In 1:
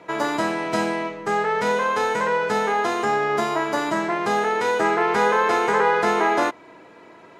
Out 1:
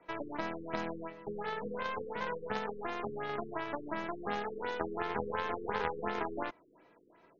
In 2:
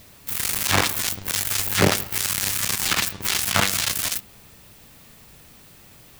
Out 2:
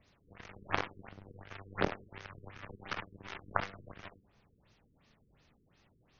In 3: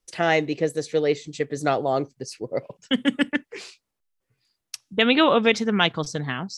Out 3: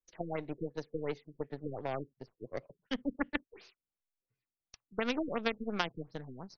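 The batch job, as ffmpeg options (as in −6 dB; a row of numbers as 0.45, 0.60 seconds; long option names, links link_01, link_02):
-filter_complex "[0:a]acrossover=split=200|2100[link_01][link_02][link_03];[link_01]acompressor=threshold=-33dB:ratio=4[link_04];[link_02]acompressor=threshold=-21dB:ratio=4[link_05];[link_03]acompressor=threshold=-38dB:ratio=4[link_06];[link_04][link_05][link_06]amix=inputs=3:normalize=0,aeval=exprs='0.422*(cos(1*acos(clip(val(0)/0.422,-1,1)))-cos(1*PI/2))+0.00335*(cos(2*acos(clip(val(0)/0.422,-1,1)))-cos(2*PI/2))+0.119*(cos(3*acos(clip(val(0)/0.422,-1,1)))-cos(3*PI/2))+0.0299*(cos(6*acos(clip(val(0)/0.422,-1,1)))-cos(6*PI/2))+0.0266*(cos(8*acos(clip(val(0)/0.422,-1,1)))-cos(8*PI/2))':channel_layout=same,afftfilt=real='re*lt(b*sr/1024,460*pow(6800/460,0.5+0.5*sin(2*PI*2.8*pts/sr)))':imag='im*lt(b*sr/1024,460*pow(6800/460,0.5+0.5*sin(2*PI*2.8*pts/sr)))':win_size=1024:overlap=0.75"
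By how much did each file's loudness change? −16.5, −19.5, −15.5 LU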